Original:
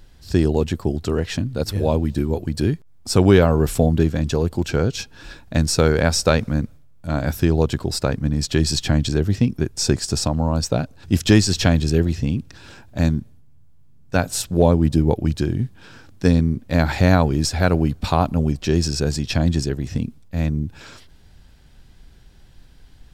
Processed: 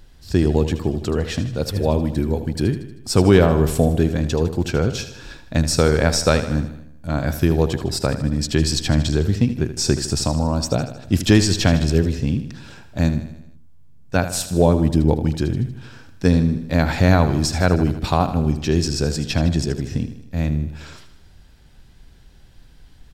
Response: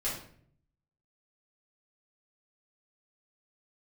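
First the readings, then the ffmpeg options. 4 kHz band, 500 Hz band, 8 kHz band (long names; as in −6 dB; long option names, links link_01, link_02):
+0.5 dB, +0.5 dB, +0.5 dB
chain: -af "aecho=1:1:78|156|234|312|390|468:0.266|0.146|0.0805|0.0443|0.0243|0.0134"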